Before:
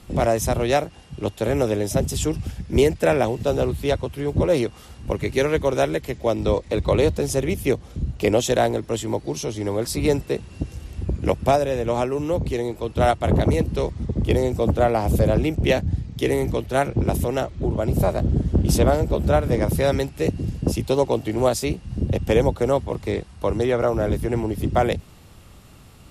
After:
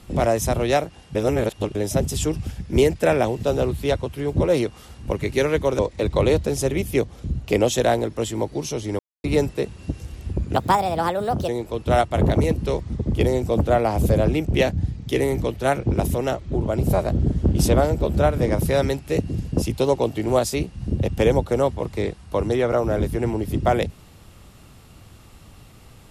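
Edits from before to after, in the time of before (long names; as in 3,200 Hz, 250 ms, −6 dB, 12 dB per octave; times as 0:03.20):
0:01.15–0:01.75: reverse
0:05.79–0:06.51: remove
0:09.71–0:09.96: silence
0:11.26–0:12.58: play speed 140%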